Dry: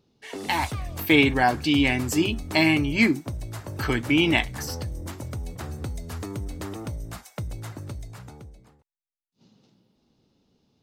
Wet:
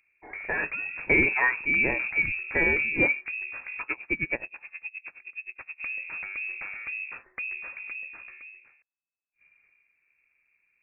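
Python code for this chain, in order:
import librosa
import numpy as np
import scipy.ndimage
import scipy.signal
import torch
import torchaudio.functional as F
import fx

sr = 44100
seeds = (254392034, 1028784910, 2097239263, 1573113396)

y = fx.freq_invert(x, sr, carrier_hz=2600)
y = fx.tremolo_db(y, sr, hz=9.5, depth_db=27, at=(3.81, 5.83))
y = y * 10.0 ** (-3.5 / 20.0)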